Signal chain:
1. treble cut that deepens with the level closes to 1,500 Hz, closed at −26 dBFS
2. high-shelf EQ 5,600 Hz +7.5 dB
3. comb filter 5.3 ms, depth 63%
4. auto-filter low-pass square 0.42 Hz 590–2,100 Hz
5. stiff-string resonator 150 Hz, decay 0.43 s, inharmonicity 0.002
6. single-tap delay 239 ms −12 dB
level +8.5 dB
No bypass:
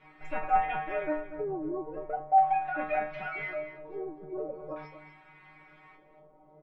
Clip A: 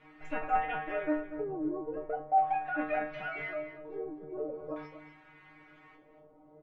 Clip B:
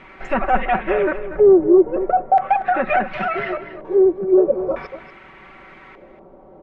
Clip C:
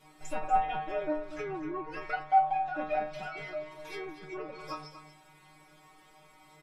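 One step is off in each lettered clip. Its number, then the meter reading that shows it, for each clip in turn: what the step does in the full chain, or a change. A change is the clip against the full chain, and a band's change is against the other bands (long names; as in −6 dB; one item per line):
3, 250 Hz band +4.5 dB
5, 250 Hz band +8.0 dB
4, 125 Hz band +1.5 dB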